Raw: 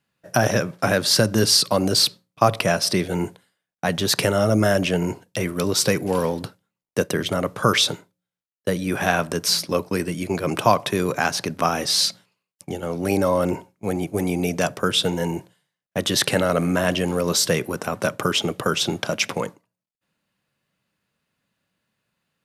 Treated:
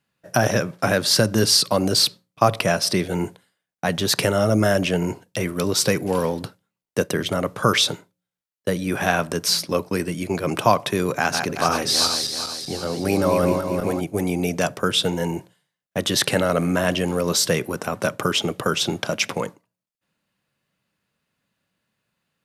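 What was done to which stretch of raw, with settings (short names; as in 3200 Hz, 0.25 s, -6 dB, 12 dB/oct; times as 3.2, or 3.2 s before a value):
11.12–14.01 regenerating reverse delay 0.192 s, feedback 65%, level -5 dB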